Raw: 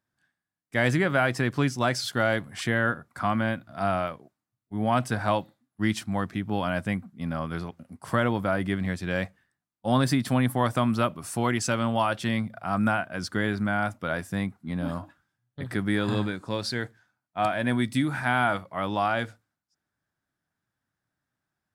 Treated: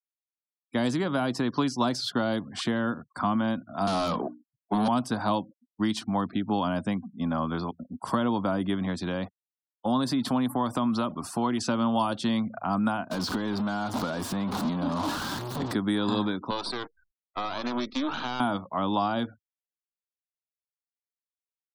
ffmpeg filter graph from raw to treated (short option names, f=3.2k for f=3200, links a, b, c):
-filter_complex "[0:a]asettb=1/sr,asplit=3[a][b][c];[a]atrim=end=3.874[d];[b]atrim=start=3.87:end=4.88,asetpts=PTS-STARTPTS,afade=t=in:d=0.004:c=qsin,afade=t=out:st=1.006:d=0.004:c=qsin,bandreject=f=60:t=h:w=6,bandreject=f=120:t=h:w=6,bandreject=f=180:t=h:w=6,bandreject=f=240:t=h:w=6,bandreject=f=300:t=h:w=6,acrossover=split=200|3000[e][f][g];[f]acompressor=threshold=-42dB:ratio=2.5:attack=3.2:release=140:knee=2.83:detection=peak[h];[e][h][g]amix=inputs=3:normalize=0,asplit=2[i][j];[j]highpass=f=720:p=1,volume=32dB,asoftclip=type=tanh:threshold=-17dB[k];[i][k]amix=inputs=2:normalize=0,lowpass=f=3.8k:p=1,volume=-6dB[l];[c]atrim=start=4.876[m];[d][l]acrossfade=d=0.004:c1=hsin:c2=qsin[n];[n][m]acrossfade=d=0.004:c1=qsin:c2=hsin,asettb=1/sr,asplit=3[o][p][q];[o]atrim=end=9.014[r];[p]atrim=start=9.01:end=11.61,asetpts=PTS-STARTPTS,afade=t=in:d=0.004:c=qsin,afade=t=out:st=2.596:d=0.004:c=qsin,acompressor=threshold=-28dB:ratio=2:attack=3.2:release=140:knee=1:detection=peak,acrusher=bits=7:mix=0:aa=0.5[s];[q]atrim=start=11.606[t];[r][s]acrossfade=d=0.004:c1=hsin:c2=qsin[u];[u][t]acrossfade=d=0.004:c1=qsin:c2=hsin,asettb=1/sr,asplit=3[v][w][x];[v]atrim=end=13.114[y];[w]atrim=start=13.11:end=15.73,asetpts=PTS-STARTPTS,afade=t=in:d=0.004:c=qsin,afade=t=out:st=2.616:d=0.004:c=qsin,aeval=exprs='val(0)+0.5*0.0422*sgn(val(0))':c=same,acompressor=threshold=-29dB:ratio=5:attack=3.2:release=140:knee=1:detection=peak[z];[x]atrim=start=15.726[aa];[y][z]acrossfade=d=0.004:c1=hsin:c2=qsin[ab];[ab][aa]acrossfade=d=0.004:c1=qsin:c2=hsin,asettb=1/sr,asplit=3[ac][ad][ae];[ac]atrim=end=16.504[af];[ad]atrim=start=16.5:end=18.4,asetpts=PTS-STARTPTS,afade=t=in:d=0.004:c=qsin,afade=t=out:st=1.896:d=0.004:c=qsin,highpass=300,equalizer=f=360:t=q:w=4:g=5,equalizer=f=1.3k:t=q:w=4:g=9,equalizer=f=2.4k:t=q:w=4:g=7,equalizer=f=3.6k:t=q:w=4:g=3,lowpass=f=4.8k:w=0.5412,lowpass=f=4.8k:w=1.3066,acompressor=threshold=-25dB:ratio=4:attack=3.2:release=140:knee=1:detection=peak,aeval=exprs='max(val(0),0)':c=same[ag];[ae]atrim=start=18.396[ah];[af][ag]acrossfade=d=0.004:c1=hsin:c2=qsin[ai];[ai][ah]acrossfade=d=0.004:c1=qsin:c2=hsin,afftfilt=real='re*gte(hypot(re,im),0.00398)':imag='im*gte(hypot(re,im),0.00398)':win_size=1024:overlap=0.75,acrossover=split=120|400|3800[aj][ak][al][am];[aj]acompressor=threshold=-43dB:ratio=4[an];[ak]acompressor=threshold=-33dB:ratio=4[ao];[al]acompressor=threshold=-34dB:ratio=4[ap];[am]acompressor=threshold=-42dB:ratio=4[aq];[an][ao][ap][aq]amix=inputs=4:normalize=0,equalizer=f=125:t=o:w=1:g=-4,equalizer=f=250:t=o:w=1:g=9,equalizer=f=1k:t=o:w=1:g=11,equalizer=f=2k:t=o:w=1:g=-9,equalizer=f=4k:t=o:w=1:g=9"